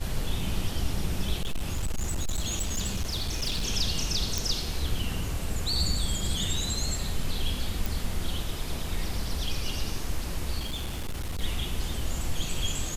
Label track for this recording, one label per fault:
1.420000	3.660000	clipping −24.5 dBFS
4.380000	4.380000	click
7.860000	7.860000	click
10.590000	11.410000	clipping −28 dBFS

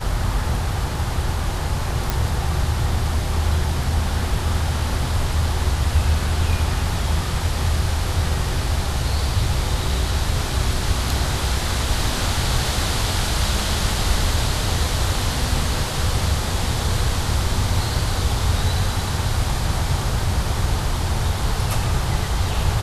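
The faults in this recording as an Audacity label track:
2.100000	2.100000	click

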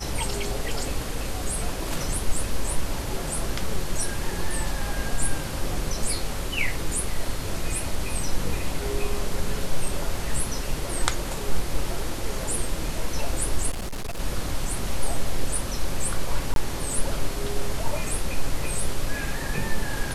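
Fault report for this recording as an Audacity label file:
13.700000	14.190000	clipping −26.5 dBFS
16.540000	16.560000	drop-out 22 ms

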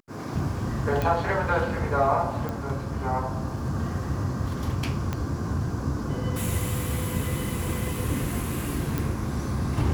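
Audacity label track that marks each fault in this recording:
1.020000	1.020000	click
2.490000	2.490000	click
5.130000	5.130000	click −15 dBFS
8.980000	8.980000	click

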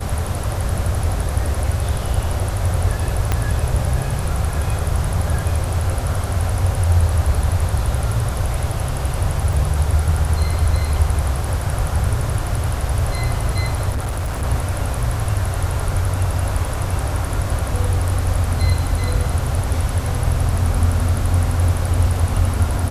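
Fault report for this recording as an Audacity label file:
3.320000	3.320000	click −4 dBFS
9.530000	9.530000	drop-out 3.1 ms
13.900000	14.440000	clipping −18.5 dBFS

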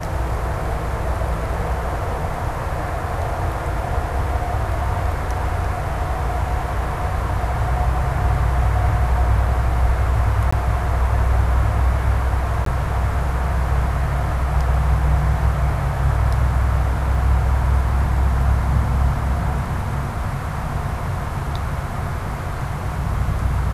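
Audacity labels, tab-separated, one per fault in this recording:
10.510000	10.530000	drop-out 15 ms
12.650000	12.660000	drop-out
17.150000	17.150000	drop-out 2.4 ms

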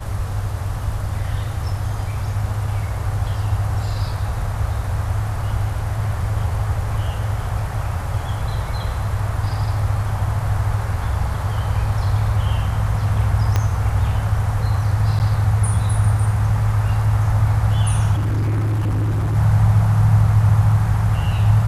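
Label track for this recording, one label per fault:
13.560000	13.560000	click −6 dBFS
15.190000	15.200000	drop-out 9.4 ms
18.150000	19.360000	clipping −17 dBFS

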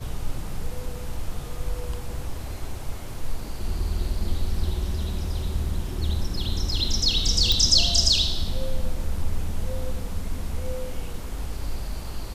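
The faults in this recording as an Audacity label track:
7.520000	7.520000	click −7 dBFS

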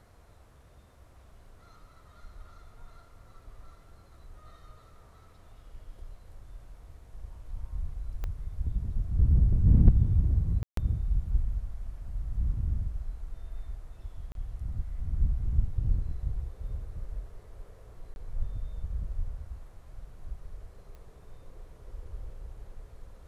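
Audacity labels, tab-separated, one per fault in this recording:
8.240000	8.240000	click −23 dBFS
10.630000	10.770000	drop-out 143 ms
14.320000	14.350000	drop-out 32 ms
18.140000	18.160000	drop-out 21 ms
20.950000	20.950000	click −37 dBFS

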